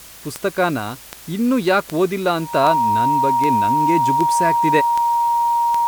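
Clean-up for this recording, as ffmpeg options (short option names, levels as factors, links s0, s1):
-af "adeclick=t=4,bandreject=f=54.5:t=h:w=4,bandreject=f=109:t=h:w=4,bandreject=f=163.5:t=h:w=4,bandreject=f=940:w=30,afftdn=nr=25:nf=-40"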